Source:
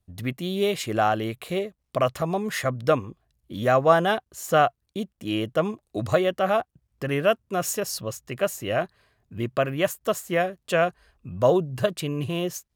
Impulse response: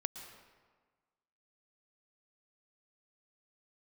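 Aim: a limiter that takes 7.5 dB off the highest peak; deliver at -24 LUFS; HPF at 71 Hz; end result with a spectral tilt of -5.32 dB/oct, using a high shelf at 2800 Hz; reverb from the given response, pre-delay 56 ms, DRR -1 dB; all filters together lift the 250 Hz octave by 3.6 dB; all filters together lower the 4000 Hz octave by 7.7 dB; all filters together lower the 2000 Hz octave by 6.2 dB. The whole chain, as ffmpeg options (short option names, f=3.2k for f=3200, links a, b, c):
-filter_complex "[0:a]highpass=71,equalizer=f=250:t=o:g=5.5,equalizer=f=2k:t=o:g=-6,highshelf=f=2.8k:g=-5.5,equalizer=f=4k:t=o:g=-3.5,alimiter=limit=-13dB:level=0:latency=1,asplit=2[a][b];[1:a]atrim=start_sample=2205,adelay=56[c];[b][c]afir=irnorm=-1:irlink=0,volume=1dB[d];[a][d]amix=inputs=2:normalize=0,volume=-1dB"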